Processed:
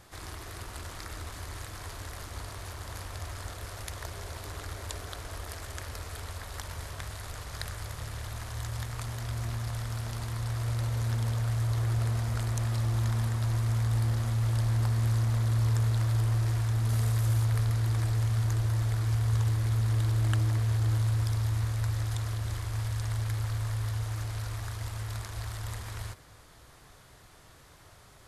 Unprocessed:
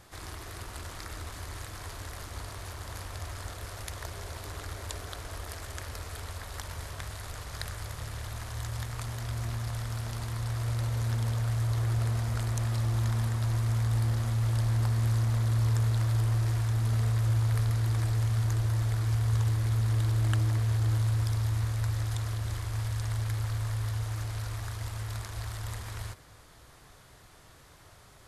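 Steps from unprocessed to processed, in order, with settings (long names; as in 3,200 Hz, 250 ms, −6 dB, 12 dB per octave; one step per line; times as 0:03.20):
0:16.89–0:17.45: high-shelf EQ 7,400 Hz +9 dB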